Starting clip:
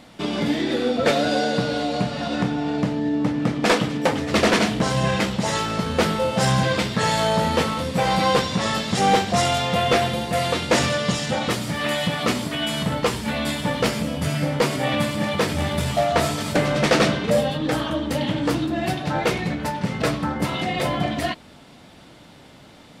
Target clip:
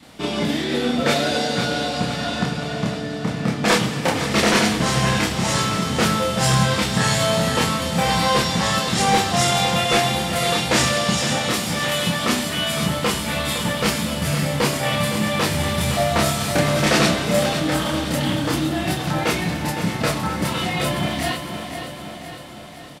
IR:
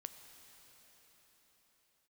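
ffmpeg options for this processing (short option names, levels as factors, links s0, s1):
-filter_complex "[0:a]aecho=1:1:511|1022|1533|2044|2555|3066:0.316|0.171|0.0922|0.0498|0.0269|0.0145,asplit=2[s0][s1];[1:a]atrim=start_sample=2205,highshelf=f=5900:g=11.5,adelay=29[s2];[s1][s2]afir=irnorm=-1:irlink=0,volume=1.33[s3];[s0][s3]amix=inputs=2:normalize=0,adynamicequalizer=threshold=0.0251:dfrequency=520:dqfactor=1.5:tfrequency=520:tqfactor=1.5:attack=5:release=100:ratio=0.375:range=2.5:mode=cutabove:tftype=bell"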